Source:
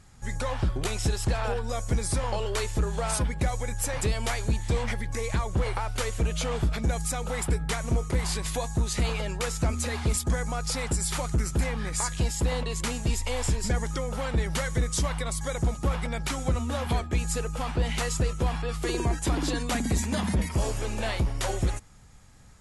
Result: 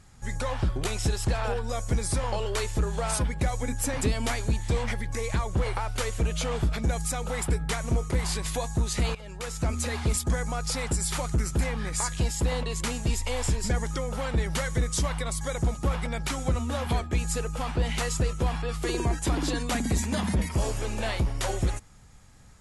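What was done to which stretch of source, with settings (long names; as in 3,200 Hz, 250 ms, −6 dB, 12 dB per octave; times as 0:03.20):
0:03.62–0:04.41: parametric band 260 Hz +14.5 dB 0.29 octaves
0:09.15–0:09.77: fade in, from −17.5 dB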